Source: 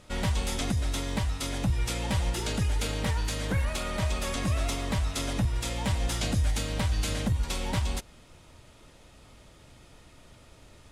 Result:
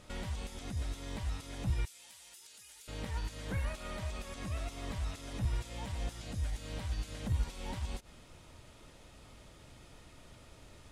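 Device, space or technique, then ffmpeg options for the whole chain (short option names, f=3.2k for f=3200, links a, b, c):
de-esser from a sidechain: -filter_complex "[0:a]asplit=2[a][b];[b]highpass=4.8k,apad=whole_len=481296[c];[a][c]sidechaincompress=threshold=-49dB:ratio=10:attack=0.95:release=70,asettb=1/sr,asplit=3[d][e][f];[d]atrim=end=1.854[g];[e]atrim=start=1.85:end=2.88,asetpts=PTS-STARTPTS,afade=t=in:d=0.004:c=qsin,afade=t=out:st=1.026:d=0.004:c=qsin,aderivative[h];[f]atrim=start=2.876[i];[g][h]acrossfade=d=0.004:c1=hsin:c2=qsin[j];[j][i]acrossfade=d=0.004:c1=qsin:c2=hsin,volume=-2dB"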